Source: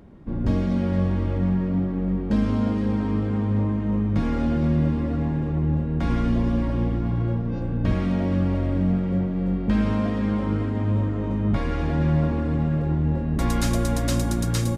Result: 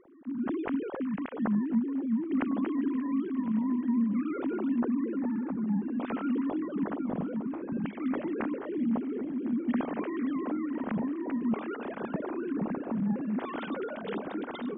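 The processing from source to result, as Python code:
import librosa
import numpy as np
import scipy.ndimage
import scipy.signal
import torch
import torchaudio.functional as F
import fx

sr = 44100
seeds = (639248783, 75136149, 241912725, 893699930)

p1 = fx.sine_speech(x, sr)
p2 = p1 + fx.echo_filtered(p1, sr, ms=1056, feedback_pct=77, hz=1100.0, wet_db=-13, dry=0)
y = p2 * 10.0 ** (-9.0 / 20.0)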